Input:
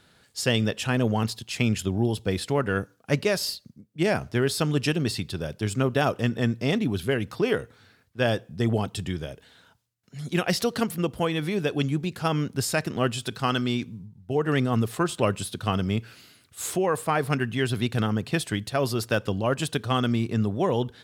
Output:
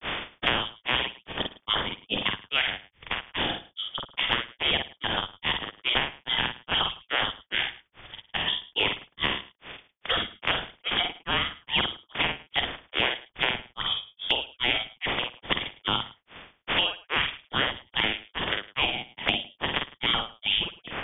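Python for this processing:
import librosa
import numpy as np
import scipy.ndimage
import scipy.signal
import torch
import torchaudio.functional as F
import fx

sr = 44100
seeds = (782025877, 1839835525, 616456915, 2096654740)

p1 = fx.spec_clip(x, sr, under_db=25)
p2 = fx.over_compress(p1, sr, threshold_db=-32.0, ratio=-1.0)
p3 = p1 + F.gain(torch.from_numpy(p2), -2.0).numpy()
p4 = fx.granulator(p3, sr, seeds[0], grain_ms=259.0, per_s=2.4, spray_ms=25.0, spread_st=0)
p5 = fx.doubler(p4, sr, ms=48.0, db=-4.0)
p6 = p5 + 10.0 ** (-21.5 / 20.0) * np.pad(p5, (int(107 * sr / 1000.0), 0))[:len(p5)]
p7 = fx.freq_invert(p6, sr, carrier_hz=3500)
y = fx.band_squash(p7, sr, depth_pct=100)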